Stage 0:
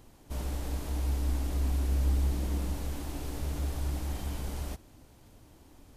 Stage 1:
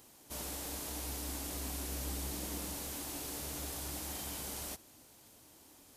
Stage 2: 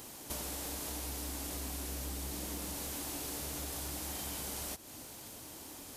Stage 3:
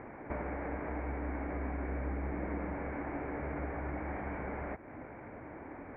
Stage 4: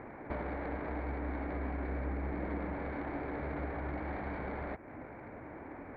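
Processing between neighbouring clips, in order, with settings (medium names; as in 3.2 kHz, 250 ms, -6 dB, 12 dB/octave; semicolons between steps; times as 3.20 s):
high-pass 300 Hz 6 dB/octave; treble shelf 4 kHz +11.5 dB; trim -2.5 dB
overload inside the chain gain 31.5 dB; compression 6:1, threshold -49 dBFS, peak gain reduction 12.5 dB; trim +11 dB
rippled Chebyshev low-pass 2.3 kHz, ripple 3 dB; trim +8 dB
tracing distortion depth 0.028 ms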